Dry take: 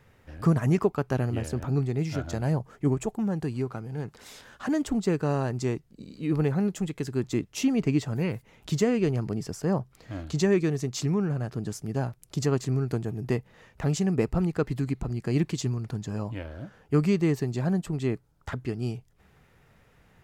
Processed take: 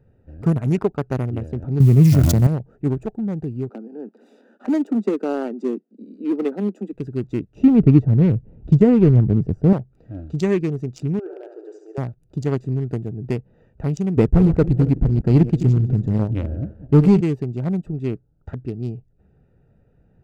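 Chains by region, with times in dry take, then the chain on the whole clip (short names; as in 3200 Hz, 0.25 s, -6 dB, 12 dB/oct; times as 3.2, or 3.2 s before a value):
1.8–2.47 switching spikes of -28 dBFS + bell 140 Hz +13.5 dB 2.2 oct + sustainer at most 32 dB/s
3.69–6.93 steep high-pass 210 Hz 72 dB/oct + low shelf 410 Hz +5.5 dB
7.55–9.73 HPF 40 Hz 6 dB/oct + tilt -4 dB/oct
11.19–11.98 brick-wall FIR band-pass 320–8200 Hz + flutter echo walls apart 12 m, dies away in 0.73 s
14.17–17.21 regenerating reverse delay 0.135 s, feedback 43%, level -11.5 dB + tilt -2 dB/oct + sample leveller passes 1
whole clip: Wiener smoothing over 41 samples; notch 1700 Hz, Q 24; gain +4 dB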